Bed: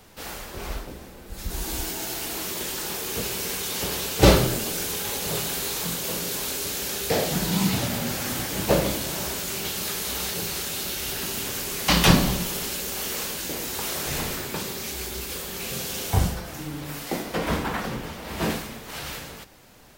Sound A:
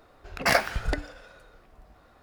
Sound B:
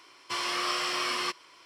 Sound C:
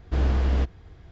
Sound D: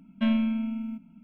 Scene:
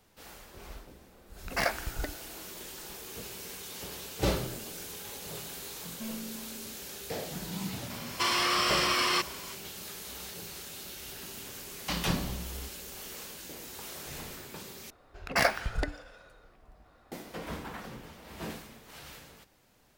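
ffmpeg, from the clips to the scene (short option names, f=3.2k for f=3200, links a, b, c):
-filter_complex "[1:a]asplit=2[a][b];[0:a]volume=-13.5dB[c];[2:a]alimiter=level_in=26.5dB:limit=-1dB:release=50:level=0:latency=1[d];[3:a]acompressor=threshold=-25dB:ratio=6:attack=3.2:release=140:knee=1:detection=peak[e];[c]asplit=2[f][g];[f]atrim=end=14.904[h];[b]atrim=end=2.22,asetpts=PTS-STARTPTS,volume=-3.5dB[i];[g]atrim=start=17.116[j];[a]atrim=end=2.22,asetpts=PTS-STARTPTS,volume=-7.5dB,afade=t=in:d=0.004:c=hsin,afade=t=out:st=2.216:d=0.004:c=hsin,adelay=1110[k];[4:a]atrim=end=1.23,asetpts=PTS-STARTPTS,volume=-16.5dB,afade=t=in:d=0.004:c=hsin,afade=t=out:st=1.226:d=0.004:c=hsin,adelay=5790[l];[d]atrim=end=1.65,asetpts=PTS-STARTPTS,volume=-17.5dB,afade=t=in:d=0.004:c=hsin,afade=t=out:st=1.646:d=0.004:c=hsin,adelay=7900[m];[e]atrim=end=1.11,asetpts=PTS-STARTPTS,volume=-13.5dB,afade=t=in:d=0.004:c=hsin,afade=t=out:st=1.106:d=0.004:c=hsin,adelay=12030[n];[h][i]acrossfade=d=0.004:c1=hsin:c2=hsin[o];[o][j]acrossfade=d=0.004:c1=hsin:c2=hsin[p];[p][k][l][m][n]amix=inputs=5:normalize=0"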